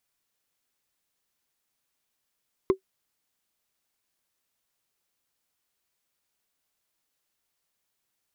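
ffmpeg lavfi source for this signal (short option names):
-f lavfi -i "aevalsrc='0.251*pow(10,-3*t/0.1)*sin(2*PI*381*t)+0.0891*pow(10,-3*t/0.03)*sin(2*PI*1050.4*t)+0.0316*pow(10,-3*t/0.013)*sin(2*PI*2058.9*t)+0.0112*pow(10,-3*t/0.007)*sin(2*PI*3403.5*t)+0.00398*pow(10,-3*t/0.004)*sin(2*PI*5082.5*t)':d=0.45:s=44100"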